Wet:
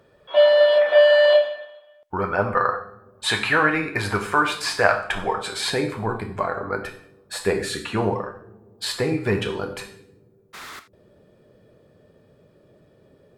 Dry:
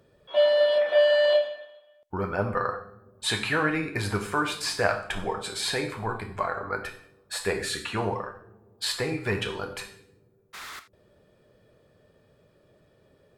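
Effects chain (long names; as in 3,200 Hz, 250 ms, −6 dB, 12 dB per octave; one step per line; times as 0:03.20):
parametric band 1,200 Hz +7 dB 2.9 octaves, from 0:05.70 250 Hz
level +1 dB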